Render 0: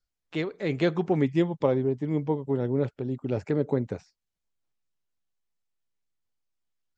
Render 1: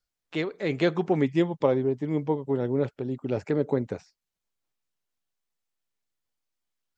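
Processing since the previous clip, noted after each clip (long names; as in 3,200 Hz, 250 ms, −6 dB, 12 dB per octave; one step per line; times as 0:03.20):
low-shelf EQ 170 Hz −6.5 dB
level +2 dB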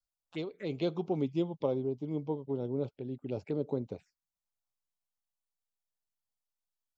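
phaser swept by the level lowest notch 340 Hz, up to 1,800 Hz, full sweep at −25 dBFS
level −7.5 dB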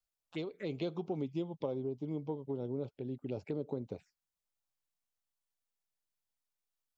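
downward compressor 2.5 to 1, threshold −35 dBFS, peak gain reduction 7 dB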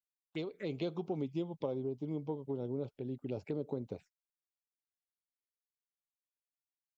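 noise gate −54 dBFS, range −36 dB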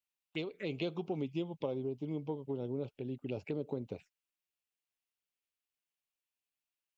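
parametric band 2,700 Hz +9 dB 0.57 octaves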